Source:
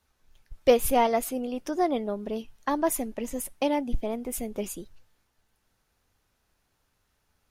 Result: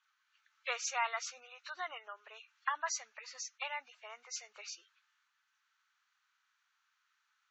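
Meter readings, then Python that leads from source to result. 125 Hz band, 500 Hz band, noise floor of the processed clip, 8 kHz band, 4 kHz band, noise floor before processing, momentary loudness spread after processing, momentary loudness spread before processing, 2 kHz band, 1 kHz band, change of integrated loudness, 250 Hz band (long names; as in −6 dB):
below −40 dB, −24.0 dB, −80 dBFS, −5.5 dB, −4.5 dB, −74 dBFS, 16 LU, 11 LU, −0.5 dB, −11.0 dB, −12.0 dB, below −40 dB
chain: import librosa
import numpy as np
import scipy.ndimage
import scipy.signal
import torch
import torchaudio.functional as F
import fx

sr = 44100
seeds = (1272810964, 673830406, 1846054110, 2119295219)

y = fx.freq_compress(x, sr, knee_hz=2100.0, ratio=1.5)
y = scipy.signal.sosfilt(scipy.signal.ellip(3, 1.0, 80, [1300.0, 6600.0], 'bandpass', fs=sr, output='sos'), y)
y = fx.spec_gate(y, sr, threshold_db=-25, keep='strong')
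y = fx.tilt_eq(y, sr, slope=-4.0)
y = y * 10.0 ** (4.5 / 20.0)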